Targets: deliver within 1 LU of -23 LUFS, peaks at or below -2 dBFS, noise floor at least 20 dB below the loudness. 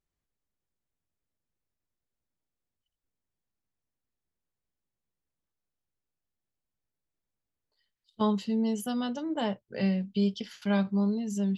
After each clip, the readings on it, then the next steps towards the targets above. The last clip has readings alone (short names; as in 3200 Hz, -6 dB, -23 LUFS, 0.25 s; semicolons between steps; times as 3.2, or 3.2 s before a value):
loudness -30.0 LUFS; peak -15.5 dBFS; loudness target -23.0 LUFS
-> gain +7 dB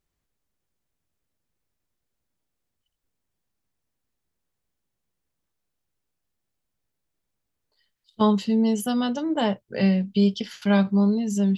loudness -23.0 LUFS; peak -8.5 dBFS; noise floor -81 dBFS